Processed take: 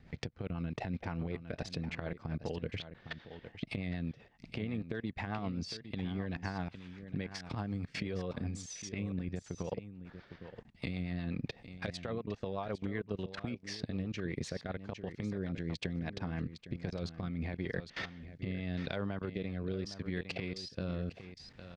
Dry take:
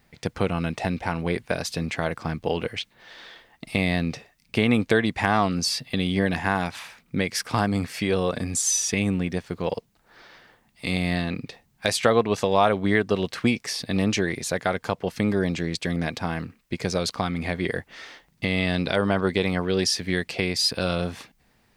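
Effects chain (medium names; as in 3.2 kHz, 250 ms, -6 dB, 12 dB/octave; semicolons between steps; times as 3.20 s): compression 20:1, threshold -36 dBFS, peak gain reduction 23 dB; transient shaper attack +8 dB, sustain -2 dB; peaking EQ 84 Hz +7 dB 2.8 oct; level held to a coarse grid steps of 21 dB; on a send: delay 808 ms -11.5 dB; on the sum: rotary cabinet horn 8 Hz, later 0.8 Hz, at 16.10 s; distance through air 140 m; trim +7 dB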